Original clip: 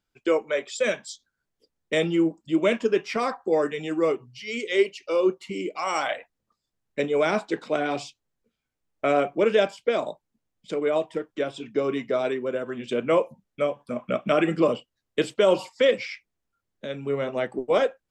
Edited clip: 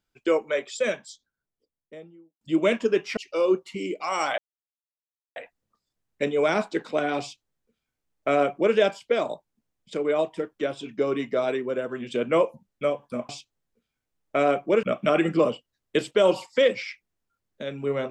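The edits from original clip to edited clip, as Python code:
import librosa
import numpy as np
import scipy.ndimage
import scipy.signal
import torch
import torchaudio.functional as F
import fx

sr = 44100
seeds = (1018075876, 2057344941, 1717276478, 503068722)

y = fx.studio_fade_out(x, sr, start_s=0.49, length_s=1.92)
y = fx.edit(y, sr, fx.cut(start_s=3.17, length_s=1.75),
    fx.insert_silence(at_s=6.13, length_s=0.98),
    fx.duplicate(start_s=7.98, length_s=1.54, to_s=14.06), tone=tone)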